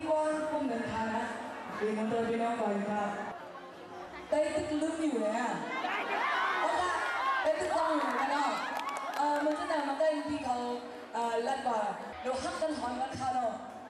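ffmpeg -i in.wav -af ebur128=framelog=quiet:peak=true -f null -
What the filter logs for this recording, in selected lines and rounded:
Integrated loudness:
  I:         -32.6 LUFS
  Threshold: -42.8 LUFS
Loudness range:
  LRA:         3.5 LU
  Threshold: -52.6 LUFS
  LRA low:   -34.5 LUFS
  LRA high:  -31.0 LUFS
True peak:
  Peak:      -20.6 dBFS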